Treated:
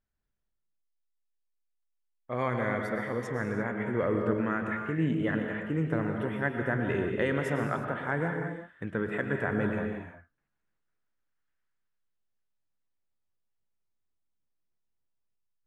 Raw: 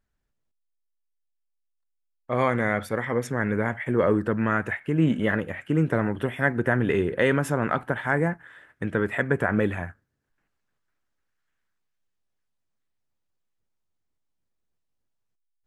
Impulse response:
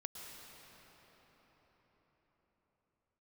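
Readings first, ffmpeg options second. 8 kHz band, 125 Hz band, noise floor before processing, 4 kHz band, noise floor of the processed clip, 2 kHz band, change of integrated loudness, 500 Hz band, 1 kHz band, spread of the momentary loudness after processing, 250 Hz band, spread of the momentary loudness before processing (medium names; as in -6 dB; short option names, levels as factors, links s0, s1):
under -10 dB, -5.5 dB, -77 dBFS, -7.0 dB, -80 dBFS, -6.0 dB, -6.0 dB, -5.5 dB, -5.5 dB, 6 LU, -5.0 dB, 6 LU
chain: -filter_complex "[0:a]highshelf=f=8800:g=-11[s0];[1:a]atrim=start_sample=2205,afade=t=out:st=0.41:d=0.01,atrim=end_sample=18522[s1];[s0][s1]afir=irnorm=-1:irlink=0,volume=0.75"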